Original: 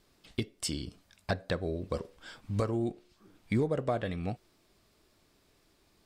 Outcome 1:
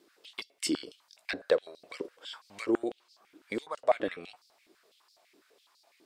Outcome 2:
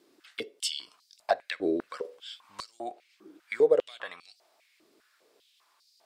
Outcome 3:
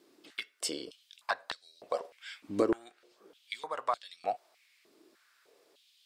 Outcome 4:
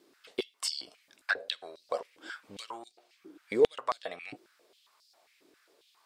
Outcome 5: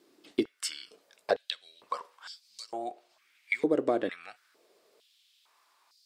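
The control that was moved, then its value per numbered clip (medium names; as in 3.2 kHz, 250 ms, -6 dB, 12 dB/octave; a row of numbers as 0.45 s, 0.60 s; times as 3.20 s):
step-sequenced high-pass, rate: 12 Hz, 5 Hz, 3.3 Hz, 7.4 Hz, 2.2 Hz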